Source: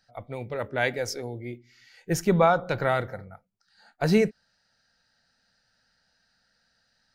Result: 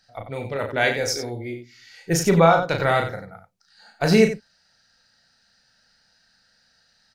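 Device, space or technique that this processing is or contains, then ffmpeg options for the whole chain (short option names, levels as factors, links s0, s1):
slapback doubling: -filter_complex "[0:a]asplit=3[s0][s1][s2];[s1]adelay=36,volume=0.562[s3];[s2]adelay=91,volume=0.355[s4];[s0][s3][s4]amix=inputs=3:normalize=0,equalizer=f=5500:t=o:w=2.5:g=4.5,volume=1.41"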